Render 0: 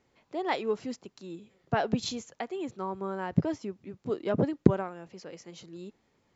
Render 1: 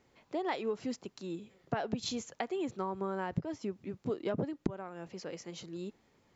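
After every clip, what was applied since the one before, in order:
downward compressor 6 to 1, threshold −33 dBFS, peak gain reduction 20 dB
level +2 dB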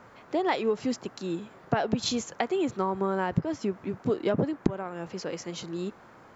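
noise in a band 99–1,500 Hz −61 dBFS
level +8 dB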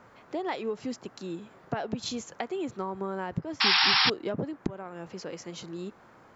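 in parallel at −3 dB: downward compressor, threshold −34 dBFS, peak gain reduction 16 dB
on the sum: sound drawn into the spectrogram noise, 0:03.60–0:04.10, 750–5,600 Hz −15 dBFS
level −7.5 dB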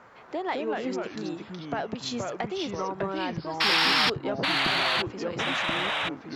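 soft clipping −15.5 dBFS, distortion −19 dB
mid-hump overdrive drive 6 dB, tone 3,600 Hz, clips at −15.5 dBFS
delay with pitch and tempo change per echo 147 ms, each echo −3 semitones, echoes 2
level +2 dB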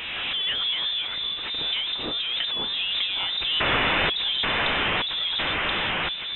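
converter with a step at zero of −31.5 dBFS
voice inversion scrambler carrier 3,800 Hz
background raised ahead of every attack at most 21 dB per second

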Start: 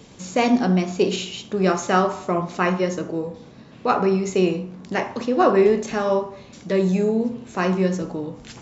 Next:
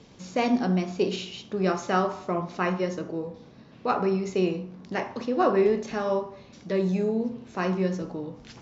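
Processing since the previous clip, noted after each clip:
Chebyshev low-pass filter 5,700 Hz, order 3
level −5.5 dB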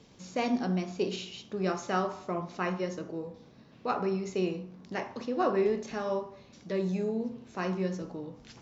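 high-shelf EQ 6,300 Hz +5 dB
level −5.5 dB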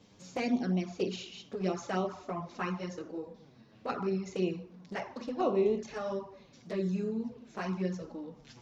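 flanger swept by the level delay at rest 10.9 ms, full sweep at −24.5 dBFS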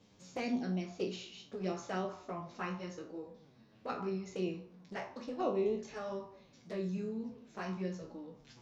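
peak hold with a decay on every bin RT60 0.31 s
level −5.5 dB

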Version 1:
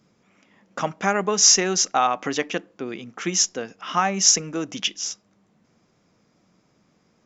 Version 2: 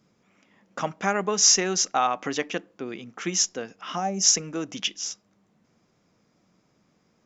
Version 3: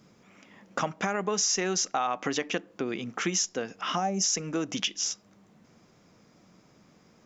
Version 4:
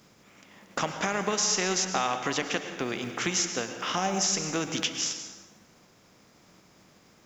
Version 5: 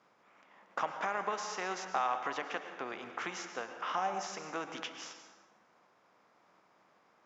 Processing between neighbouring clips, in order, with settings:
gain on a spectral selection 0:03.97–0:04.23, 880–4,700 Hz −13 dB; level −3 dB
brickwall limiter −14.5 dBFS, peak gain reduction 9 dB; downward compressor 2.5 to 1, threshold −36 dBFS, peak gain reduction 10.5 dB; level +7 dB
compressing power law on the bin magnitudes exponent 0.68; convolution reverb RT60 1.4 s, pre-delay 97 ms, DRR 7 dB
resonant band-pass 1,000 Hz, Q 1.2; level −2 dB

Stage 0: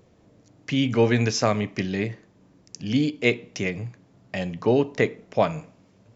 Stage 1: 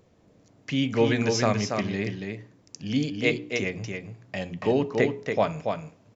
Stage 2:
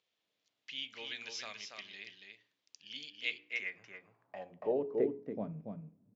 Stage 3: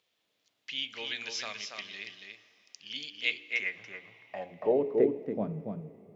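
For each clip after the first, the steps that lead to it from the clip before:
mains-hum notches 60/120/180/240/300/360/420 Hz; single-tap delay 282 ms −5 dB; level −2.5 dB
band-pass filter sweep 3,400 Hz → 200 Hz, 0:03.20–0:05.56; level −5 dB
convolution reverb RT60 3.9 s, pre-delay 72 ms, DRR 18.5 dB; level +6.5 dB

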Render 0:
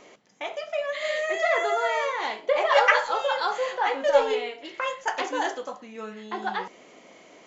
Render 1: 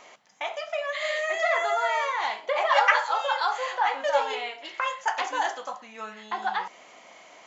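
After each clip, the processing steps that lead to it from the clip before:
low shelf with overshoot 570 Hz −9 dB, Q 1.5
in parallel at −1.5 dB: downward compressor, threshold −30 dBFS, peak gain reduction 17 dB
on the sum: level −3 dB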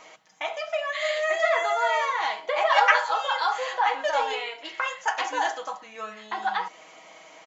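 comb filter 6.3 ms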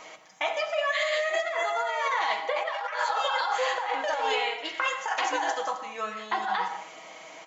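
compressor whose output falls as the input rises −28 dBFS, ratio −1
on a send at −9.5 dB: convolution reverb, pre-delay 73 ms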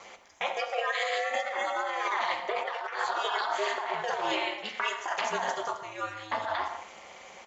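ring modulation 110 Hz

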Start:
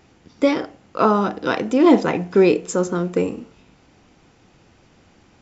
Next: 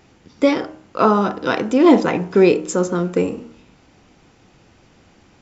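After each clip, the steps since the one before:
hum removal 77.99 Hz, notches 21
level +2 dB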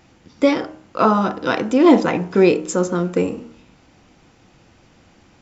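notch filter 410 Hz, Q 12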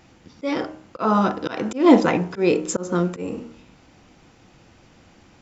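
volume swells 196 ms

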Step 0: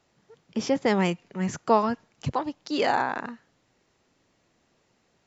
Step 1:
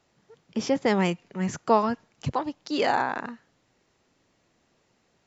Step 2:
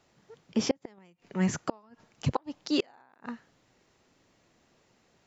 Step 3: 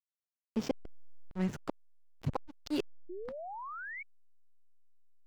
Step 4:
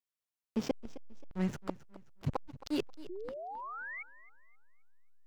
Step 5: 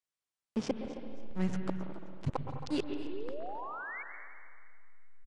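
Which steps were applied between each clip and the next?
no processing that can be heard
gate with flip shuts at −15 dBFS, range −35 dB; level +1.5 dB
slack as between gear wheels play −26.5 dBFS; sound drawn into the spectrogram rise, 0:03.09–0:04.03, 340–2,300 Hz −37 dBFS; level −5.5 dB
feedback echo with a swinging delay time 266 ms, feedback 34%, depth 84 cents, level −17 dB
downsampling to 22,050 Hz; on a send at −5 dB: convolution reverb RT60 2.0 s, pre-delay 114 ms

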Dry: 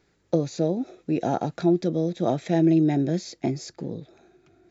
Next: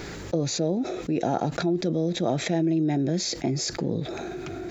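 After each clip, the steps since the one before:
envelope flattener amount 70%
level −5.5 dB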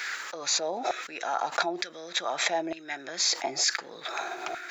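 brickwall limiter −17 dBFS, peak gain reduction 5 dB
auto-filter high-pass saw down 1.1 Hz 750–1,700 Hz
level +4 dB

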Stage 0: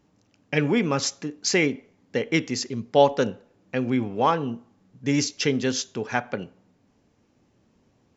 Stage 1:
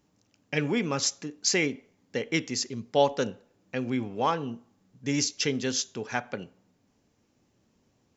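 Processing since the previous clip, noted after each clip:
high-shelf EQ 4,300 Hz +8.5 dB
level −5.5 dB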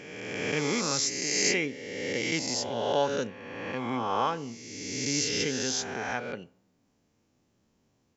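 peak hold with a rise ahead of every peak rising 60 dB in 1.77 s
level −5.5 dB

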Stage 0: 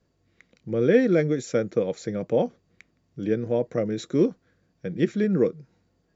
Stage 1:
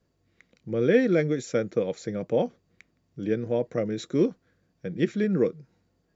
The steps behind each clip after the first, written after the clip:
dynamic equaliser 2,800 Hz, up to +3 dB, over −40 dBFS, Q 0.78
level −2 dB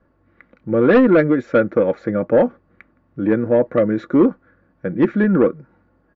low-pass with resonance 1,400 Hz, resonance Q 2.1
comb filter 3.5 ms, depth 42%
in parallel at −7 dB: sine wavefolder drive 8 dB, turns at −7.5 dBFS
on the sum: level +1.5 dB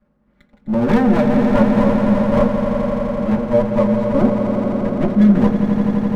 lower of the sound and its delayed copy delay 4.9 ms
echo that builds up and dies away 85 ms, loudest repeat 5, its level −9 dB
on a send at −4.5 dB: convolution reverb RT60 0.20 s, pre-delay 3 ms
on the sum: level −6.5 dB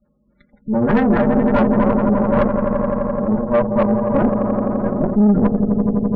dynamic equaliser 1,600 Hz, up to +6 dB, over −36 dBFS, Q 1.1
gate on every frequency bin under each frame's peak −20 dB strong
tube saturation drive 12 dB, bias 0.7
level +3.5 dB

